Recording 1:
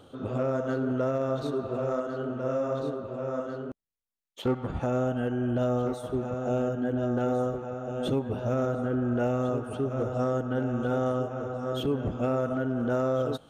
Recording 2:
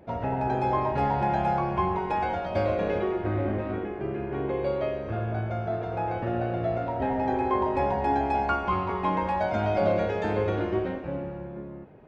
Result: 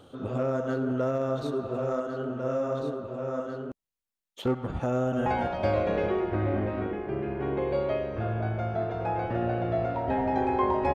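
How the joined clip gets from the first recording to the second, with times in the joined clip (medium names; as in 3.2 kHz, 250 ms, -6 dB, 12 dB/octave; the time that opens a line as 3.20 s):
recording 1
4.91–5.26 s: echo throw 210 ms, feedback 15%, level -5 dB
5.26 s: go over to recording 2 from 2.18 s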